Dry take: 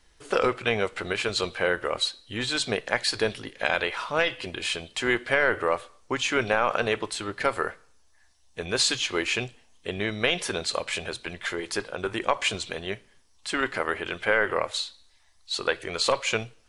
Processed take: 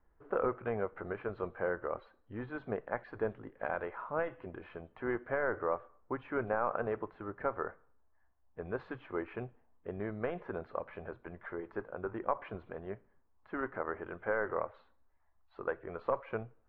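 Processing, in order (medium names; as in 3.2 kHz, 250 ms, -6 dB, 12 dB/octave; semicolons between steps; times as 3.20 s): low-pass 1.4 kHz 24 dB/octave; trim -8 dB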